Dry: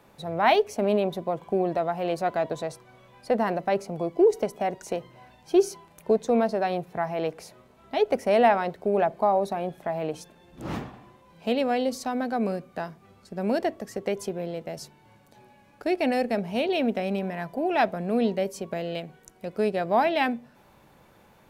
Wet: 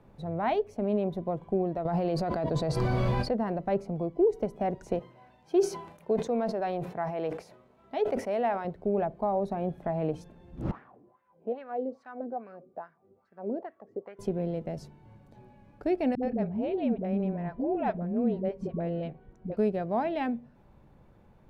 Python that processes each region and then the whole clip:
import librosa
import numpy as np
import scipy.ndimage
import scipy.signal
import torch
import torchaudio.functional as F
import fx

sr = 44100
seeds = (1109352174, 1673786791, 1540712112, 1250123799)

y = fx.chain(x, sr, fx.peak_eq(hz=4600.0, db=12.0, octaves=0.25),
    fx.env_flatten(amount_pct=100), at=(1.85, 3.31))
y = fx.chain(y, sr, fx.highpass(hz=160.0, slope=6),
    fx.low_shelf(hz=320.0, db=-9.0),
    fx.sustainer(db_per_s=89.0), at=(4.99, 8.65))
y = fx.chain(y, sr, fx.highpass(hz=53.0, slope=12),
    fx.wah_lfo(hz=2.4, low_hz=360.0, high_hz=1700.0, q=3.3), at=(10.71, 14.19))
y = fx.chain(y, sr, fx.spacing_loss(db_at_10k=20),
    fx.dispersion(late='highs', ms=78.0, hz=360.0), at=(16.15, 19.57))
y = fx.tilt_eq(y, sr, slope=-3.5)
y = fx.rider(y, sr, range_db=3, speed_s=0.5)
y = y * librosa.db_to_amplitude(-7.5)